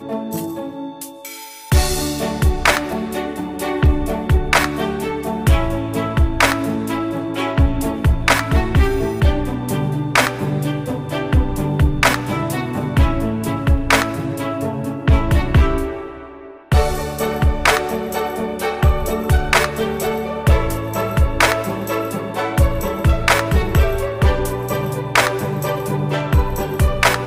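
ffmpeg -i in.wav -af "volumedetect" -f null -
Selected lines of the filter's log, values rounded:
mean_volume: -17.6 dB
max_volume: -5.6 dB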